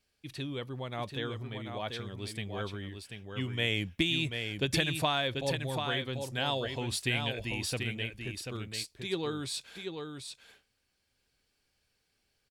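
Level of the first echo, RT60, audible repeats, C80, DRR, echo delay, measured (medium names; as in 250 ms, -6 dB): -6.0 dB, no reverb, 1, no reverb, no reverb, 738 ms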